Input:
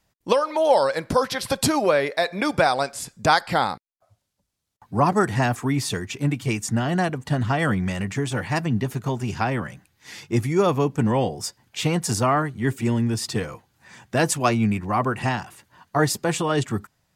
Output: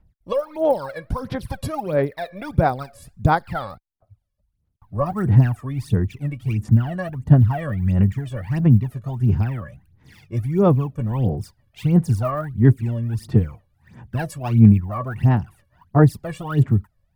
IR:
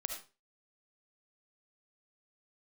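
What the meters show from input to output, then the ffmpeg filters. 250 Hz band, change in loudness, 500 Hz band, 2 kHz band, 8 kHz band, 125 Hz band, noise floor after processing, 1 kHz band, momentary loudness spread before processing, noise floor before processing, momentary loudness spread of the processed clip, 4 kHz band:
+3.0 dB, +2.5 dB, -2.0 dB, -7.5 dB, under -15 dB, +8.5 dB, -69 dBFS, -4.0 dB, 8 LU, -75 dBFS, 14 LU, under -10 dB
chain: -af "aemphasis=mode=reproduction:type=riaa,aphaser=in_gain=1:out_gain=1:delay=1.8:decay=0.77:speed=1.5:type=sinusoidal,aexciter=amount=3.2:drive=8.1:freq=9400,volume=0.282"

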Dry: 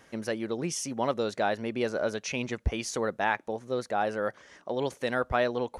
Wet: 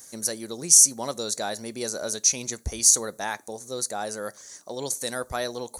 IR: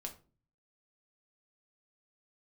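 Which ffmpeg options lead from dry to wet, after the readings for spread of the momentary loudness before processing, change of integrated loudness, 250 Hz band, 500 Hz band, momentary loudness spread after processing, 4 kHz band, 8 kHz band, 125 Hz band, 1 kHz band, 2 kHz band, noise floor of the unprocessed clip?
5 LU, +8.0 dB, -3.5 dB, -3.5 dB, 19 LU, +10.0 dB, +21.0 dB, -3.5 dB, -3.5 dB, -3.5 dB, -60 dBFS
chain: -filter_complex "[0:a]bandreject=f=5200:w=7.5,aexciter=amount=15.5:drive=6.4:freq=4500,asplit=2[s0][s1];[1:a]atrim=start_sample=2205,adelay=14[s2];[s1][s2]afir=irnorm=-1:irlink=0,volume=0.178[s3];[s0][s3]amix=inputs=2:normalize=0,volume=0.668"

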